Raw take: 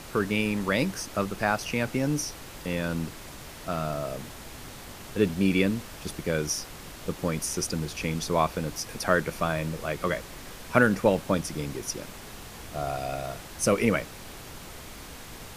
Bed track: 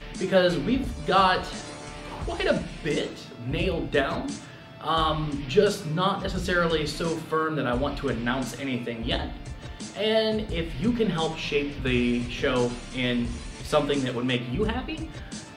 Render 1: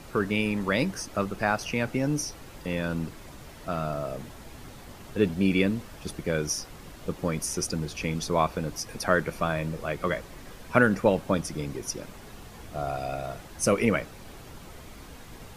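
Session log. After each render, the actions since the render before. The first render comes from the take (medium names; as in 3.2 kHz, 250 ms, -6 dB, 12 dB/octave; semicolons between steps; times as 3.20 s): noise reduction 7 dB, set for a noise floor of -44 dBFS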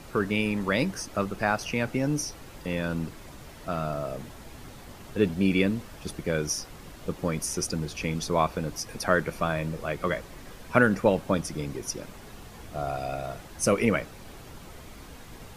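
no audible change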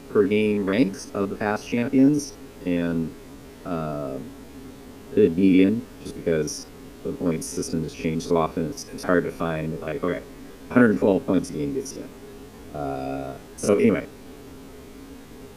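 spectrogram pixelated in time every 50 ms; small resonant body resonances 270/410 Hz, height 15 dB, ringing for 80 ms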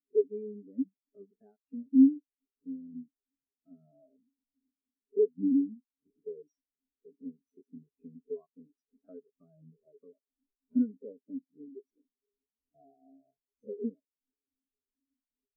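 compression 2.5:1, threshold -31 dBFS, peak gain reduction 13.5 dB; spectral contrast expander 4:1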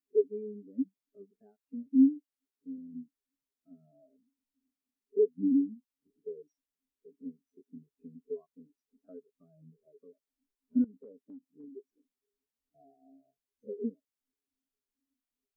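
1.87–2.78 s: bass shelf 160 Hz -8 dB; 10.84–11.64 s: compression, threshold -46 dBFS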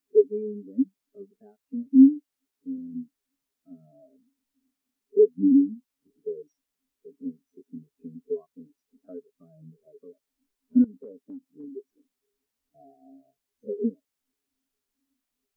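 trim +8 dB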